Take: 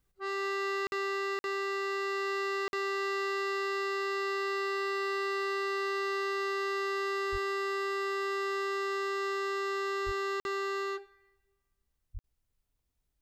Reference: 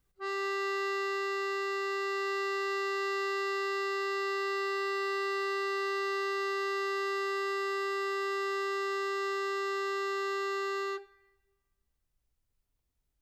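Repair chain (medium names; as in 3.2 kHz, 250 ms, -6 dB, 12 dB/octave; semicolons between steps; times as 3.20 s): de-plosive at 7.31/10.05/12.13 s; interpolate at 0.87/1.39/2.68/10.40/12.19 s, 51 ms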